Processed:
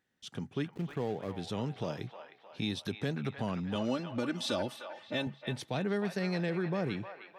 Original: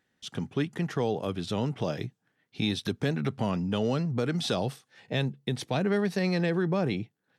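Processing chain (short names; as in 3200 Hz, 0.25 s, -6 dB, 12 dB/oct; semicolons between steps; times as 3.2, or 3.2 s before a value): 0.66–1.37 median filter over 25 samples; 3.75–5.27 comb 3.4 ms, depth 82%; band-limited delay 0.309 s, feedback 50%, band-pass 1400 Hz, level -6 dB; gain -6 dB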